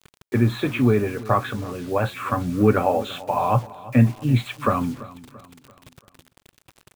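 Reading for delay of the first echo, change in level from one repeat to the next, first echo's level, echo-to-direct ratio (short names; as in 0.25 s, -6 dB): 0.339 s, -7.0 dB, -18.5 dB, -17.5 dB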